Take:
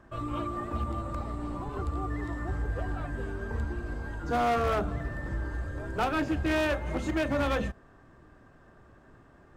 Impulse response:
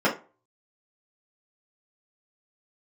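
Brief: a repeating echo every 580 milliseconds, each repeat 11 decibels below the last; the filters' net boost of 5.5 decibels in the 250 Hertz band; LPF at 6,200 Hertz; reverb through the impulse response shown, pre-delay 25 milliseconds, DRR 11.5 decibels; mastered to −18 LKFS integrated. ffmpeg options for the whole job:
-filter_complex "[0:a]lowpass=6200,equalizer=frequency=250:width_type=o:gain=7,aecho=1:1:580|1160|1740:0.282|0.0789|0.0221,asplit=2[link_01][link_02];[1:a]atrim=start_sample=2205,adelay=25[link_03];[link_02][link_03]afir=irnorm=-1:irlink=0,volume=-28dB[link_04];[link_01][link_04]amix=inputs=2:normalize=0,volume=11dB"

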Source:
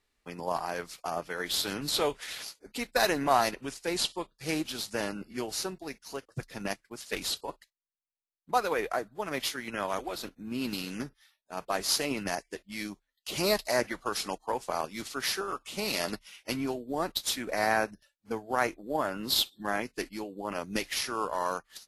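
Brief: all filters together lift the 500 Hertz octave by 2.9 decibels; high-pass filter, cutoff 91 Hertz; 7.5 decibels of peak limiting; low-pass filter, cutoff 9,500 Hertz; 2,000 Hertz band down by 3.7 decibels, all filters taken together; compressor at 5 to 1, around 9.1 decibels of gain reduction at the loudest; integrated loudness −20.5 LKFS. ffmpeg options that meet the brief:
ffmpeg -i in.wav -af "highpass=91,lowpass=9500,equalizer=frequency=500:width_type=o:gain=4,equalizer=frequency=2000:width_type=o:gain=-5,acompressor=threshold=-29dB:ratio=5,volume=16.5dB,alimiter=limit=-7.5dB:level=0:latency=1" out.wav

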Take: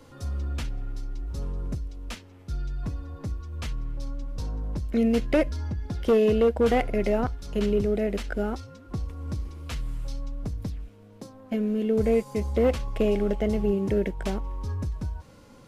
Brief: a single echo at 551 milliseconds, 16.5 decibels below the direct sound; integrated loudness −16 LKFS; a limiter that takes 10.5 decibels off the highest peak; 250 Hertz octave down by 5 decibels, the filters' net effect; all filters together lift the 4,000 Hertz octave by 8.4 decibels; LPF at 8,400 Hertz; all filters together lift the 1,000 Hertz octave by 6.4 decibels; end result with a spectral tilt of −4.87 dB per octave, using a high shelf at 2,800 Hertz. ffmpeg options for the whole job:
ffmpeg -i in.wav -af "lowpass=8400,equalizer=frequency=250:width_type=o:gain=-6.5,equalizer=frequency=1000:width_type=o:gain=8.5,highshelf=frequency=2800:gain=8.5,equalizer=frequency=4000:width_type=o:gain=4,alimiter=limit=-19dB:level=0:latency=1,aecho=1:1:551:0.15,volume=15dB" out.wav

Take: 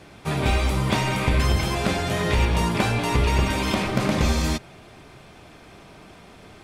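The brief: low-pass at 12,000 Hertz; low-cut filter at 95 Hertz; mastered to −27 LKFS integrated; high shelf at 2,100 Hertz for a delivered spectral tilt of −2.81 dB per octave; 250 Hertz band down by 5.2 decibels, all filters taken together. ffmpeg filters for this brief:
ffmpeg -i in.wav -af "highpass=95,lowpass=12000,equalizer=frequency=250:width_type=o:gain=-7.5,highshelf=frequency=2100:gain=9,volume=-5dB" out.wav

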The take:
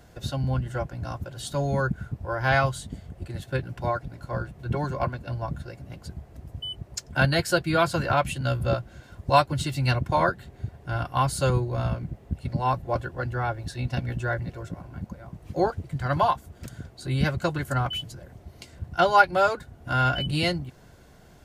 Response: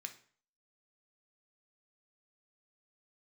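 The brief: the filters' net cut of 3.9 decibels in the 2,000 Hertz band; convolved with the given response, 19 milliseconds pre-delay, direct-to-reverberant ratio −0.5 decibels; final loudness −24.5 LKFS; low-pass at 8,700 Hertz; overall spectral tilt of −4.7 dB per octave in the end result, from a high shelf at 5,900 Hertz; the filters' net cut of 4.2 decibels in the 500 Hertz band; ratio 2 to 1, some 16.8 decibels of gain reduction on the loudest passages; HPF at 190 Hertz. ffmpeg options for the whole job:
-filter_complex "[0:a]highpass=190,lowpass=8700,equalizer=frequency=500:width_type=o:gain=-5,equalizer=frequency=2000:width_type=o:gain=-5.5,highshelf=frequency=5900:gain=-3,acompressor=threshold=-46dB:ratio=2,asplit=2[link_01][link_02];[1:a]atrim=start_sample=2205,adelay=19[link_03];[link_02][link_03]afir=irnorm=-1:irlink=0,volume=4dB[link_04];[link_01][link_04]amix=inputs=2:normalize=0,volume=15.5dB"

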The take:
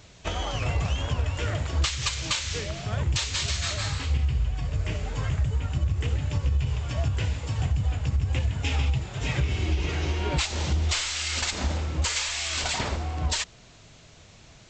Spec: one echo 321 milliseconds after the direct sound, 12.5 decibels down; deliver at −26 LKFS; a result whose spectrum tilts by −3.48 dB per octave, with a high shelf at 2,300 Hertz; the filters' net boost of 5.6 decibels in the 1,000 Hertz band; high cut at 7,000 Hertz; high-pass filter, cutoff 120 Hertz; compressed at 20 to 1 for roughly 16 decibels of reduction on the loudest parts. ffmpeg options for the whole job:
ffmpeg -i in.wav -af "highpass=120,lowpass=7000,equalizer=frequency=1000:width_type=o:gain=6.5,highshelf=frequency=2300:gain=3,acompressor=threshold=-37dB:ratio=20,aecho=1:1:321:0.237,volume=14.5dB" out.wav

